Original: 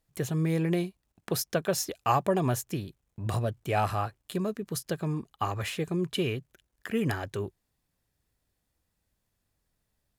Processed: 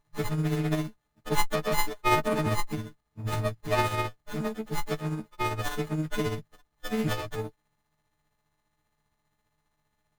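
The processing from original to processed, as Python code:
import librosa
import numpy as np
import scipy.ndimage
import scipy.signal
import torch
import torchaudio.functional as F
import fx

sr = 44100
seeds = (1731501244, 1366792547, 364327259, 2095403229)

y = fx.freq_snap(x, sr, grid_st=6)
y = y * (1.0 - 0.45 / 2.0 + 0.45 / 2.0 * np.cos(2.0 * np.pi * 15.0 * (np.arange(len(y)) / sr)))
y = fx.running_max(y, sr, window=17)
y = y * librosa.db_to_amplitude(1.5)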